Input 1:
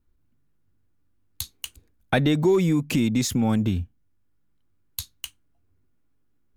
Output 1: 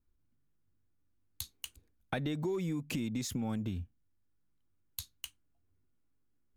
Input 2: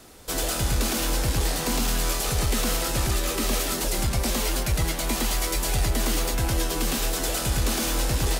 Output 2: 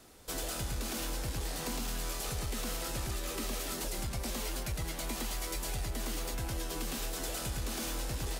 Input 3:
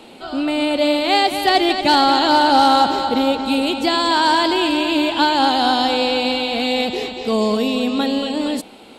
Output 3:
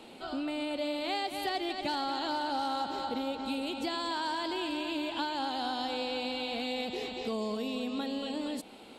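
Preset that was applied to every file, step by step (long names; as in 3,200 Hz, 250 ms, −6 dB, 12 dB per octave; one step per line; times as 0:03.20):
downward compressor 3 to 1, threshold −25 dBFS
level −8.5 dB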